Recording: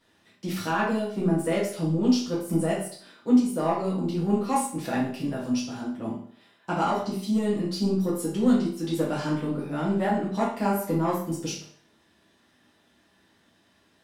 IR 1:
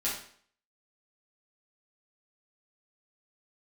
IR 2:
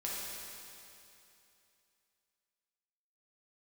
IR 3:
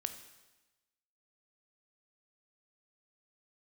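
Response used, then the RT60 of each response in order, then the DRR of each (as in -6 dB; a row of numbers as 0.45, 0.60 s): 1; 0.55, 2.8, 1.1 s; -8.0, -6.0, 8.0 dB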